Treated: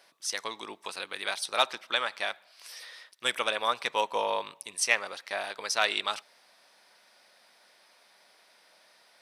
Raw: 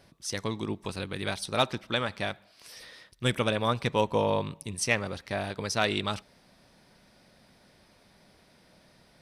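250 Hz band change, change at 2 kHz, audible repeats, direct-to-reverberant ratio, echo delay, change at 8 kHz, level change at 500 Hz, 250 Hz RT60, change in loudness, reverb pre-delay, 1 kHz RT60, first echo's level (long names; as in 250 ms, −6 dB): −16.0 dB, +2.5 dB, no echo audible, no reverb audible, no echo audible, +2.5 dB, −4.5 dB, no reverb audible, −0.5 dB, no reverb audible, no reverb audible, no echo audible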